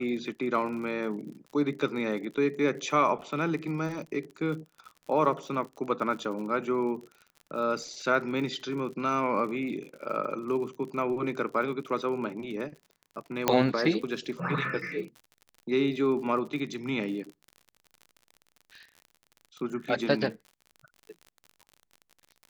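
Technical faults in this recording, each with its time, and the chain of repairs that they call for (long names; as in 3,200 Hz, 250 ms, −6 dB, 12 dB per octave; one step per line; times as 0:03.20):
surface crackle 54 per second −39 dBFS
0:13.48: click −6 dBFS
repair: click removal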